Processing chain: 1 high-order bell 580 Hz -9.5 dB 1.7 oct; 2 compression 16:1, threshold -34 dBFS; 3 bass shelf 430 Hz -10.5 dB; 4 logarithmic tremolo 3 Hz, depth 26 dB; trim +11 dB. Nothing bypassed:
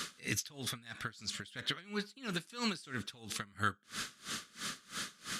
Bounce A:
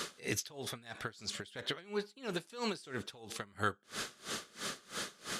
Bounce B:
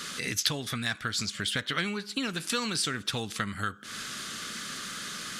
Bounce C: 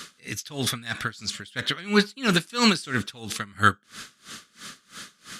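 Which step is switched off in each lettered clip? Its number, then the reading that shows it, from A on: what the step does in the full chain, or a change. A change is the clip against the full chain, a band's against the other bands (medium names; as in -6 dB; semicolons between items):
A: 1, 500 Hz band +8.0 dB; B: 4, momentary loudness spread change +2 LU; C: 2, mean gain reduction 8.0 dB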